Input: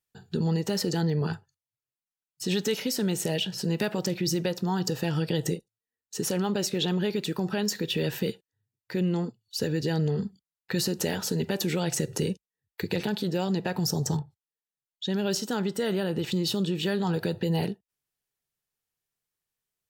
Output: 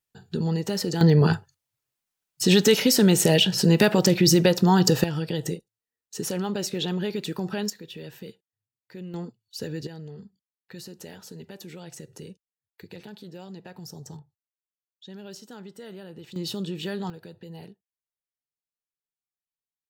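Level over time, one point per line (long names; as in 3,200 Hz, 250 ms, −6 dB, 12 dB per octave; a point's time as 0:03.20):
+0.5 dB
from 0:01.01 +9.5 dB
from 0:05.04 −1 dB
from 0:07.70 −12 dB
from 0:09.14 −5 dB
from 0:09.87 −14 dB
from 0:16.36 −4 dB
from 0:17.10 −15.5 dB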